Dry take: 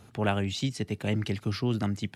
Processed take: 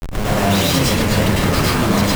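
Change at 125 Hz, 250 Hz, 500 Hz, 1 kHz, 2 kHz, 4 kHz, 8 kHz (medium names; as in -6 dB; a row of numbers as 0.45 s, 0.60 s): +12.0 dB, +13.0 dB, +14.0 dB, +17.0 dB, +16.5 dB, +17.0 dB, +22.0 dB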